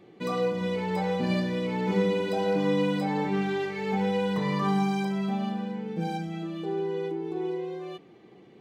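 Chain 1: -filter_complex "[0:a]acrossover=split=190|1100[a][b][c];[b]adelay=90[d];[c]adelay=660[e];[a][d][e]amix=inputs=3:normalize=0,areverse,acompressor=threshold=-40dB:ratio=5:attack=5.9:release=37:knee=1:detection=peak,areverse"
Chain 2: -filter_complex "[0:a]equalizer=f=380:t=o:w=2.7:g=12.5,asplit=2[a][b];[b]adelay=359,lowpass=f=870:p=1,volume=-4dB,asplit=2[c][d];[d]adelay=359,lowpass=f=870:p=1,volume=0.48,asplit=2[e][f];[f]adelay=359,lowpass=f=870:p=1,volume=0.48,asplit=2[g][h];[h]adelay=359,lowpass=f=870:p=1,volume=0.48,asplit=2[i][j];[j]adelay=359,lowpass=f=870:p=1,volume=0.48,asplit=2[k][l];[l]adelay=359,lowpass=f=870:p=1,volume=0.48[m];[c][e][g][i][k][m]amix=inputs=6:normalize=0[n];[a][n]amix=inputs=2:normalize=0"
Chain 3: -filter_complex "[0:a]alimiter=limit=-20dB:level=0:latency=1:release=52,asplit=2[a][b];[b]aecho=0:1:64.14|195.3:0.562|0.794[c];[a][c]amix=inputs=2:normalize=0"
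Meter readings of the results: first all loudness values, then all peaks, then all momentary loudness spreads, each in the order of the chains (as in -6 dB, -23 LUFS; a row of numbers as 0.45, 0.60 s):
-40.5, -17.5, -28.5 LUFS; -29.0, -2.5, -15.0 dBFS; 2, 10, 8 LU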